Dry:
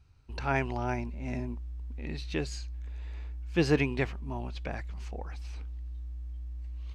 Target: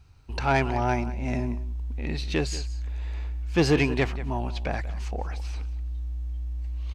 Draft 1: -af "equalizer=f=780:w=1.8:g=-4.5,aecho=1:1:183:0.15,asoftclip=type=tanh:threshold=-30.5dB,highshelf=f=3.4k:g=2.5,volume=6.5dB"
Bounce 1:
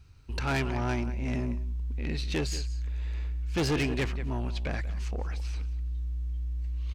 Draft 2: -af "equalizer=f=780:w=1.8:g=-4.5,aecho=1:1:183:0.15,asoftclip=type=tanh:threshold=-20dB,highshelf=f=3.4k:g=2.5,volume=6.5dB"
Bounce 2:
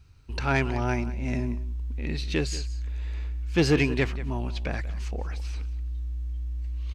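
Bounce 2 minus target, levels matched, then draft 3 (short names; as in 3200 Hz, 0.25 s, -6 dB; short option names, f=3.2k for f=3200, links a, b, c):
1000 Hz band -4.5 dB
-af "equalizer=f=780:w=1.8:g=3,aecho=1:1:183:0.15,asoftclip=type=tanh:threshold=-20dB,highshelf=f=3.4k:g=2.5,volume=6.5dB"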